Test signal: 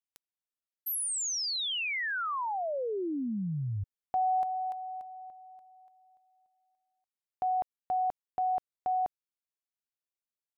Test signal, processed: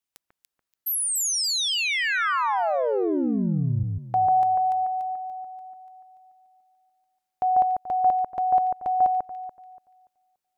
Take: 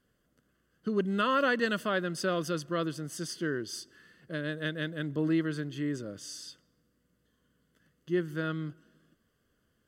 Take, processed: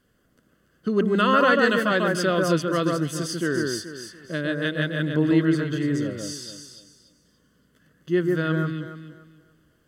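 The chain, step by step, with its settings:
delay that swaps between a low-pass and a high-pass 144 ms, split 1,900 Hz, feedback 52%, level −2 dB
level +7 dB

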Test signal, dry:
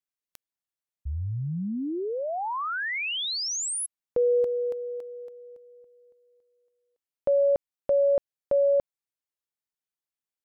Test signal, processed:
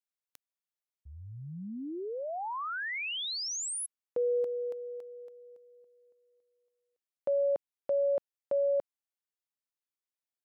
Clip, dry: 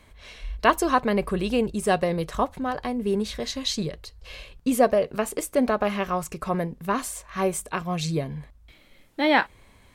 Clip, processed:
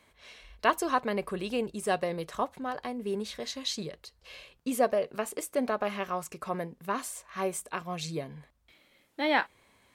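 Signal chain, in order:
high-pass filter 270 Hz 6 dB per octave
level −5.5 dB

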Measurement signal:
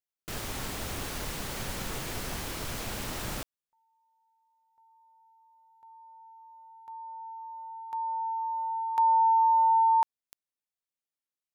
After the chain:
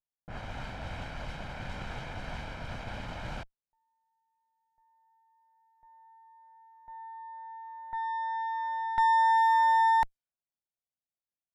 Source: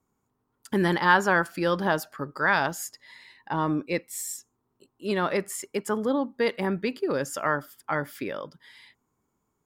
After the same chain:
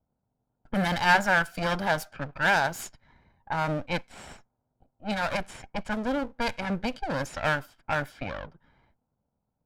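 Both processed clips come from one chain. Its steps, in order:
lower of the sound and its delayed copy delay 1.3 ms
low-pass that shuts in the quiet parts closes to 690 Hz, open at −25.5 dBFS

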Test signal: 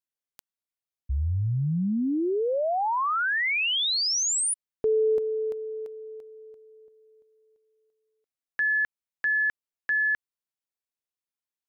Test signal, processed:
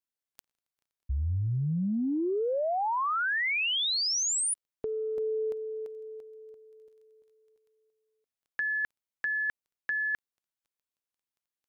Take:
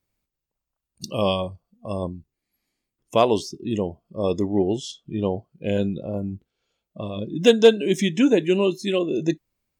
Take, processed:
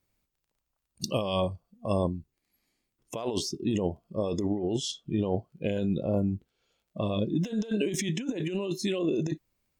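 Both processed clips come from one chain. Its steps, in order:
compressor whose output falls as the input rises −26 dBFS, ratio −1
surface crackle 11 per second −56 dBFS
level −3 dB

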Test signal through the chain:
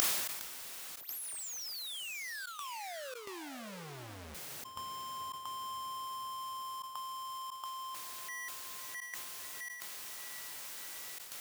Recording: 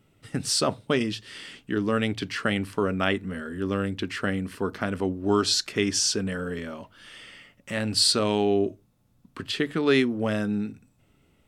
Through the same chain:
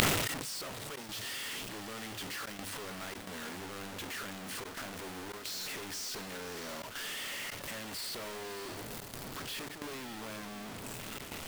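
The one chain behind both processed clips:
sign of each sample alone
low-shelf EQ 300 Hz −9.5 dB
on a send: feedback delay with all-pass diffusion 594 ms, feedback 66%, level −11.5 dB
on the sum: gate pattern "xx.xxxx.xxxxxxxx" 110 BPM −24 dB
gate with flip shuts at −40 dBFS, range −30 dB
level that may fall only so fast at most 35 dB per second
level +17.5 dB

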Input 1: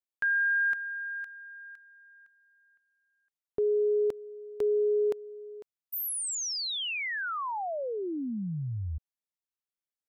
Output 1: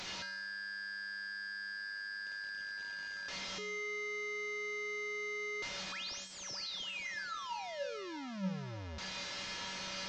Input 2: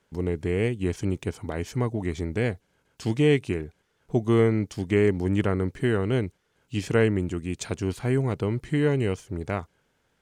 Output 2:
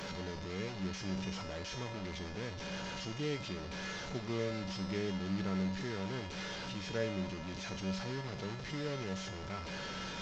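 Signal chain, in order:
linear delta modulator 32 kbit/s, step −21 dBFS
tuned comb filter 190 Hz, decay 0.71 s, harmonics odd, mix 90%
level +1.5 dB

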